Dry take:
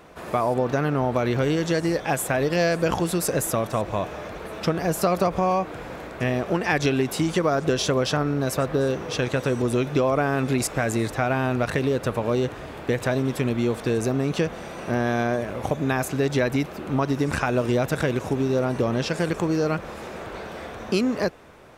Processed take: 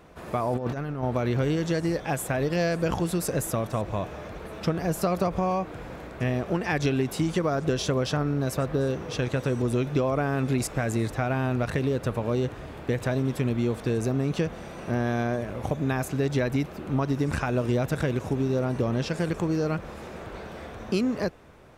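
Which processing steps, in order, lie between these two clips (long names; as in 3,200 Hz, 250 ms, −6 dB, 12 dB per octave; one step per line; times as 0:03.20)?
low-shelf EQ 210 Hz +7.5 dB
0:00.52–0:01.03: compressor whose output falls as the input rises −23 dBFS, ratio −0.5
level −5.5 dB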